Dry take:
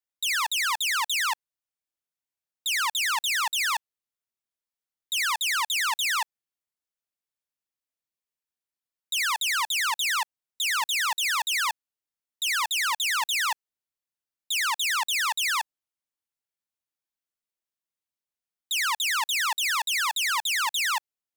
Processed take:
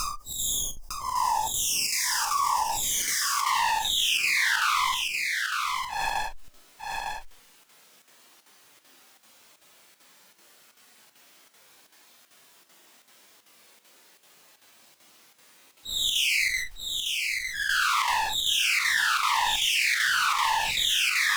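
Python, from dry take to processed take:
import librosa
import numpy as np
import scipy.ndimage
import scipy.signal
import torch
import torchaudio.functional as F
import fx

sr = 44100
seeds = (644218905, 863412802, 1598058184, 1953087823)

p1 = fx.block_reorder(x, sr, ms=153.0, group=3)
p2 = scipy.signal.sosfilt(scipy.signal.butter(2, 180.0, 'highpass', fs=sr, output='sos'), p1)
p3 = fx.high_shelf(p2, sr, hz=7300.0, db=-8.0)
p4 = fx.schmitt(p3, sr, flips_db=-37.5)
p5 = p3 + (p4 * librosa.db_to_amplitude(-11.5))
p6 = fx.spec_box(p5, sr, start_s=13.79, length_s=1.47, low_hz=1200.0, high_hz=4700.0, gain_db=-15)
p7 = fx.paulstretch(p6, sr, seeds[0], factor=4.0, window_s=0.1, from_s=14.39)
p8 = fx.chopper(p7, sr, hz=2.6, depth_pct=65, duty_pct=85)
p9 = p8 + fx.echo_single(p8, sr, ms=905, db=-14.5, dry=0)
y = fx.env_flatten(p9, sr, amount_pct=70)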